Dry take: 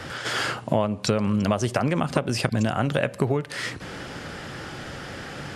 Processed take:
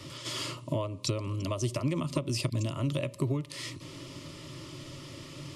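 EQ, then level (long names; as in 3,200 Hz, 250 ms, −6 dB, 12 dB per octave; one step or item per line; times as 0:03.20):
Butterworth band-reject 770 Hz, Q 2.1
phaser with its sweep stopped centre 310 Hz, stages 8
−3.5 dB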